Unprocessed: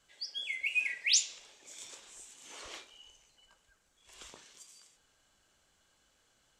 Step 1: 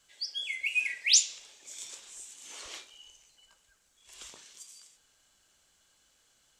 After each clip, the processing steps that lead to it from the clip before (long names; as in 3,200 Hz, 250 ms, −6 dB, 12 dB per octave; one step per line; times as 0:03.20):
high-shelf EQ 2,600 Hz +8.5 dB
level −2 dB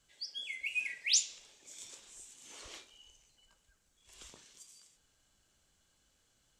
low-shelf EQ 350 Hz +11 dB
level −6.5 dB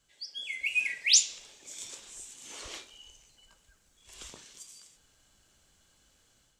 automatic gain control gain up to 7 dB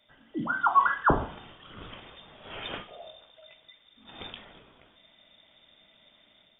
voice inversion scrambler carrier 3,600 Hz
level +8 dB